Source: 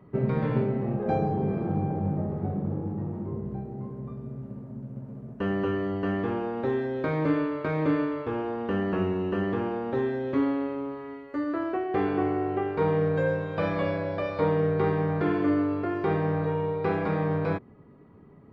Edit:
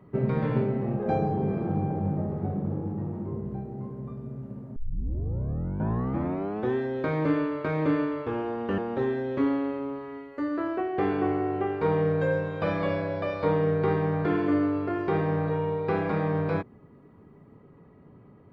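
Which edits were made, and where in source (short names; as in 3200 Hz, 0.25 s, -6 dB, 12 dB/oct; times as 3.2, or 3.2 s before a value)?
4.76 tape start 2.00 s
8.78–9.74 cut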